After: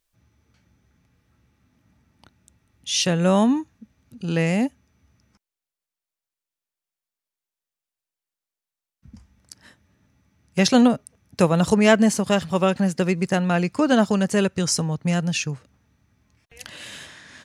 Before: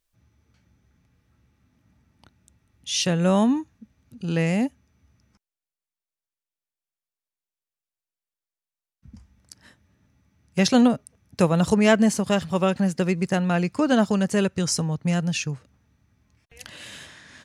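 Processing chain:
low-shelf EQ 160 Hz −3.5 dB
level +2.5 dB

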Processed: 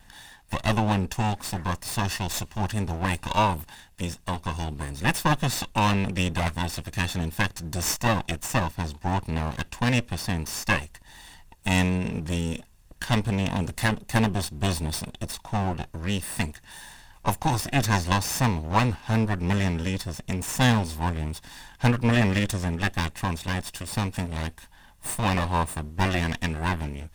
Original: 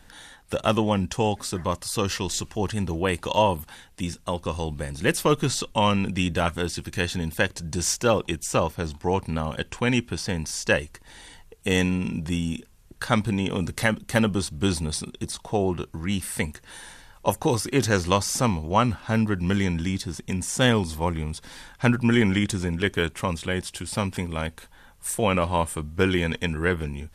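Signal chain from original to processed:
lower of the sound and its delayed copy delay 1.1 ms

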